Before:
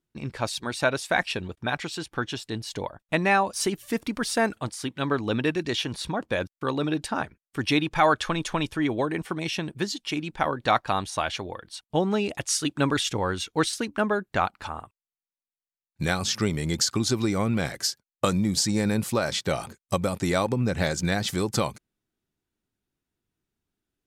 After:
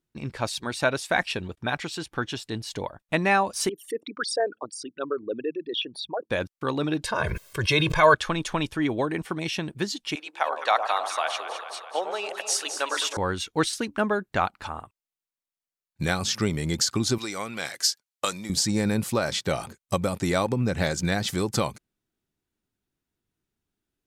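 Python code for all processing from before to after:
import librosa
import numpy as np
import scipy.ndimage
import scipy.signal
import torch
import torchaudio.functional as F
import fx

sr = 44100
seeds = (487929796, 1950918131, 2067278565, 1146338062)

y = fx.chain(x, sr, fx.envelope_sharpen(power=3.0),
    fx.highpass(hz=430.0, slope=12), at=(3.69, 6.3))
y = fx.chain(y, sr, fx.comb(ms=1.9, depth=0.9),
    fx.sustainer(db_per_s=34.0), at=(7.04, 8.15))
y = fx.chain(y, sr, fx.highpass(hz=520.0, slope=24),
    fx.echo_alternate(ms=105, hz=1100.0, feedback_pct=80, wet_db=-7.0), at=(10.15, 13.17))
y = fx.chain(y, sr, fx.highpass(hz=1000.0, slope=6),
    fx.peak_eq(hz=6000.0, db=4.0, octaves=2.4), at=(17.18, 18.5))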